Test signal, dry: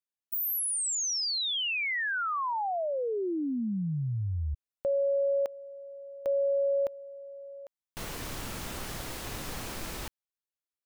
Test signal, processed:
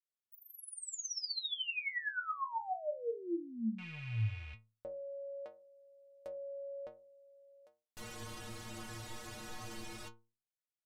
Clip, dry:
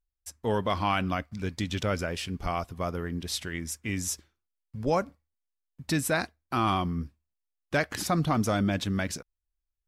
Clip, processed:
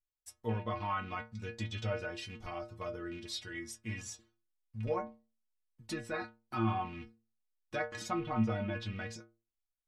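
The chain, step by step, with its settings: rattle on loud lows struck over -30 dBFS, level -29 dBFS; low-pass that closes with the level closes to 2.4 kHz, closed at -22.5 dBFS; inharmonic resonator 110 Hz, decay 0.37 s, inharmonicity 0.008; trim +2.5 dB

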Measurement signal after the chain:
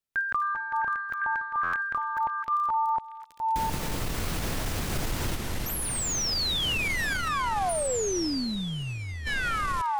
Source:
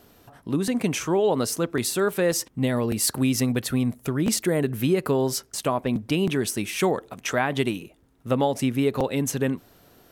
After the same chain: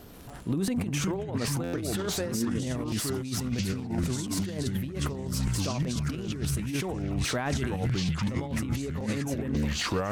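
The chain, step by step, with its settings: ever faster or slower copies 134 ms, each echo -5 st, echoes 2; bass shelf 210 Hz +8.5 dB; crackle 13 per s -31 dBFS; transient shaper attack -7 dB, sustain -2 dB; repeats whose band climbs or falls 258 ms, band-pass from 1.6 kHz, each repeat 0.7 oct, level -8 dB; compressor with a negative ratio -24 dBFS, ratio -0.5; peak limiter -18.5 dBFS; buffer glitch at 1.63 s, samples 512, times 8; slew-rate limiter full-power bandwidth 280 Hz; trim -1.5 dB

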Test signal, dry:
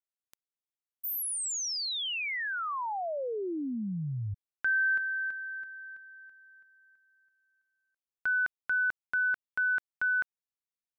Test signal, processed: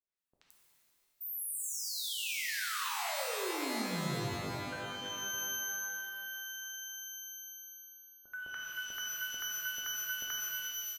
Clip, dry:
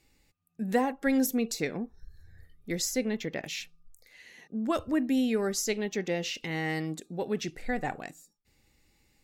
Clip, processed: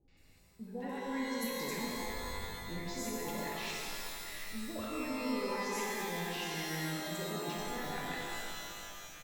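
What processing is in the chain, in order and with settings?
reverse; compression 4:1, threshold -43 dBFS; reverse; three bands offset in time lows, mids, highs 80/170 ms, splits 720/5500 Hz; pitch-shifted reverb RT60 2.5 s, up +12 st, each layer -2 dB, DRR -3 dB

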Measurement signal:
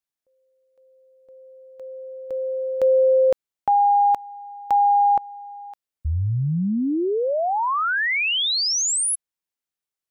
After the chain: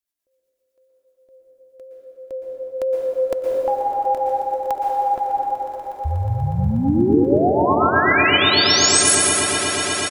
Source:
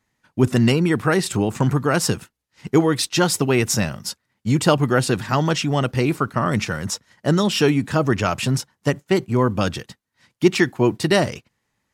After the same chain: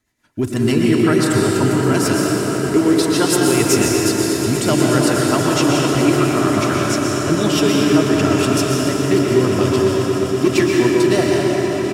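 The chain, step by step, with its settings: treble shelf 7.7 kHz +7 dB; comb 3 ms, depth 43%; in parallel at +2 dB: peak limiter -13.5 dBFS; on the sum: hard clipper -4 dBFS; rotary cabinet horn 8 Hz; on a send: echo with a slow build-up 121 ms, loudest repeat 8, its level -17 dB; on the sum: plate-style reverb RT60 4.4 s, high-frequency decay 0.5×, pre-delay 105 ms, DRR -3 dB; trim -5 dB

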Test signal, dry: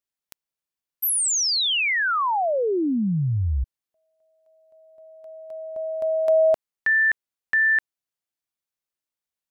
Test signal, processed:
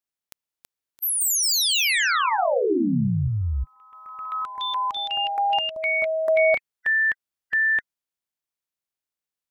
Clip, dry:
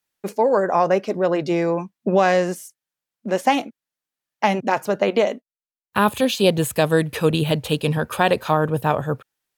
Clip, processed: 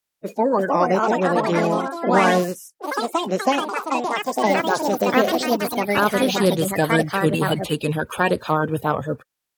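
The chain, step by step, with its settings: coarse spectral quantiser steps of 30 dB; ever faster or slower copies 393 ms, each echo +4 st, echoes 3; trim -1 dB

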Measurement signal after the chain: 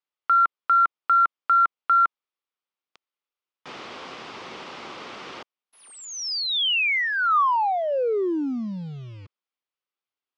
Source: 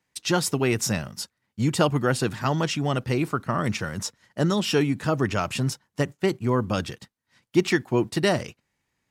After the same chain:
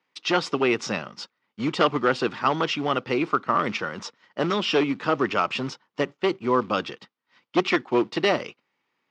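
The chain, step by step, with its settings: one-sided wavefolder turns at -18 dBFS; in parallel at -4 dB: short-mantissa float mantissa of 2-bit; on the sum: cabinet simulation 320–4500 Hz, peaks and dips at 650 Hz -4 dB, 1.2 kHz +4 dB, 1.7 kHz -5 dB, 4.1 kHz -4 dB

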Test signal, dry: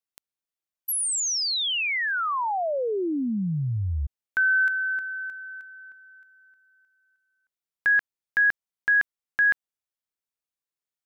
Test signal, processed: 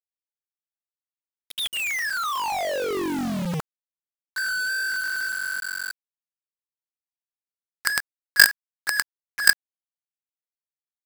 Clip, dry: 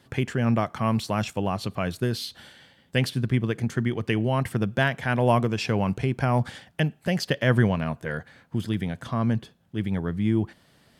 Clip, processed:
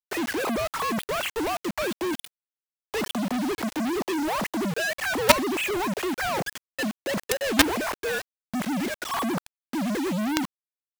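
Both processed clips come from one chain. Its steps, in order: formants replaced by sine waves; companded quantiser 2-bit; trim -1 dB

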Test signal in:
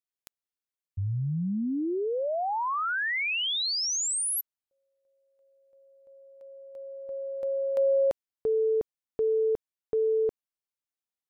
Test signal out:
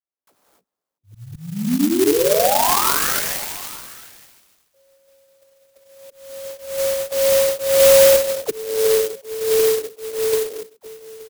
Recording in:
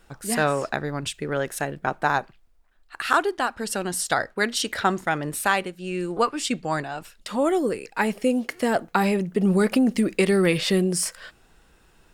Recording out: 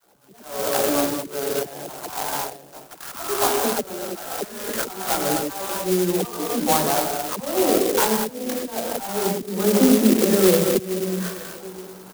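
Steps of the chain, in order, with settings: high-pass 230 Hz 12 dB/octave; bass shelf 460 Hz -4.5 dB; compression 2.5:1, threshold -39 dBFS; chorus 0.18 Hz, delay 15.5 ms, depth 7 ms; low-pass 1.3 kHz 12 dB/octave; echo from a far wall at 150 m, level -21 dB; gated-style reverb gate 310 ms flat, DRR 1 dB; level rider gain up to 14 dB; slow attack 423 ms; phase dispersion lows, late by 62 ms, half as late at 510 Hz; sampling jitter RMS 0.13 ms; trim +8 dB

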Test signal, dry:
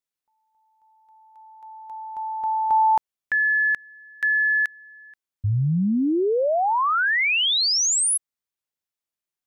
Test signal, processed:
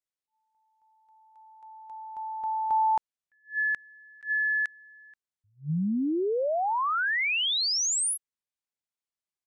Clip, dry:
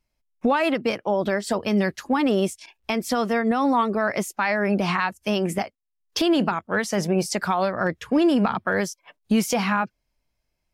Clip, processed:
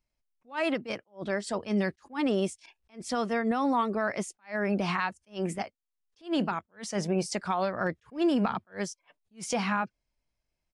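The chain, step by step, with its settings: resampled via 22.05 kHz; attacks held to a fixed rise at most 260 dB/s; trim -6 dB

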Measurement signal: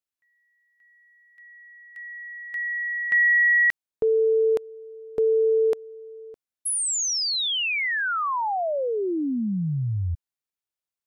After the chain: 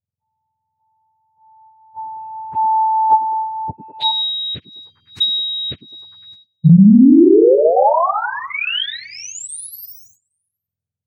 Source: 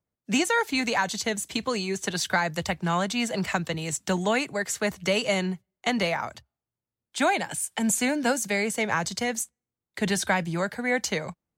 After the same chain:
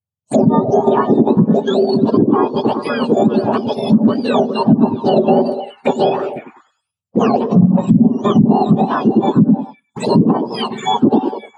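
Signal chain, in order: spectrum inverted on a logarithmic axis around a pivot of 1.3 kHz; peaking EQ 420 Hz +3 dB 1 oct; transient shaper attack -2 dB, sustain -7 dB; treble shelf 3.8 kHz -10.5 dB; on a send: repeats whose band climbs or falls 102 ms, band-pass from 260 Hz, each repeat 0.7 oct, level -3.5 dB; on the sum: expander -39 dBFS, range -21 dB; low-pass that closes with the level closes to 390 Hz, closed at -17.5 dBFS; touch-sensitive phaser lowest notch 320 Hz, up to 2.1 kHz, full sweep at -28.5 dBFS; loudness maximiser +17 dB; trim -1 dB

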